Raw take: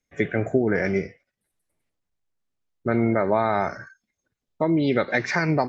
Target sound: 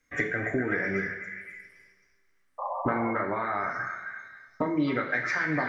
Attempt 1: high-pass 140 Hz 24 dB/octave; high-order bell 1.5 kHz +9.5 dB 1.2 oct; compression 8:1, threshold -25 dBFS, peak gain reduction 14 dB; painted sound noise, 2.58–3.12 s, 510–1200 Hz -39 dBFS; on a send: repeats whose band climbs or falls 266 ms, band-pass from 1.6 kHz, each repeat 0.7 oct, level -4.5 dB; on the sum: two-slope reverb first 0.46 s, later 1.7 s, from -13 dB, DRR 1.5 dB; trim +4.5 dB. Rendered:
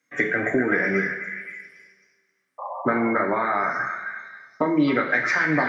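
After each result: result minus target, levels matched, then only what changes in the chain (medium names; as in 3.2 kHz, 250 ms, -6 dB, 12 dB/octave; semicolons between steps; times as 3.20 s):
compression: peak gain reduction -6.5 dB; 125 Hz band -3.5 dB
change: compression 8:1, threshold -32.5 dBFS, peak gain reduction 20.5 dB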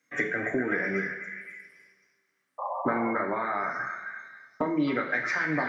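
125 Hz band -4.0 dB
remove: high-pass 140 Hz 24 dB/octave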